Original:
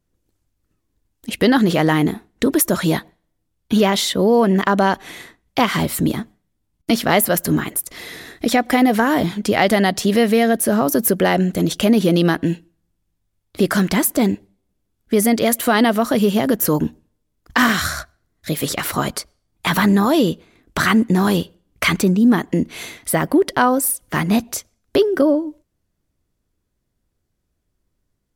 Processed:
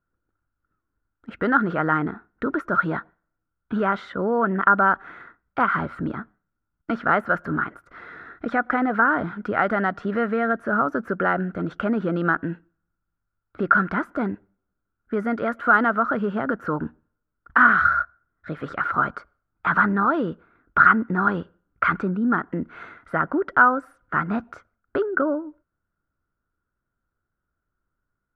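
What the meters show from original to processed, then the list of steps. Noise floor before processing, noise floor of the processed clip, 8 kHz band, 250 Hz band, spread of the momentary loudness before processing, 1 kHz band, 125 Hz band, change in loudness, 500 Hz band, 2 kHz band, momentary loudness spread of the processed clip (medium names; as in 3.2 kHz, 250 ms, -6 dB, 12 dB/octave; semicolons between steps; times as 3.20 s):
-73 dBFS, -81 dBFS, under -40 dB, -9.0 dB, 12 LU, 0.0 dB, -9.5 dB, -5.0 dB, -8.5 dB, +1.0 dB, 14 LU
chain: resonant low-pass 1.4 kHz, resonance Q 13; trim -9.5 dB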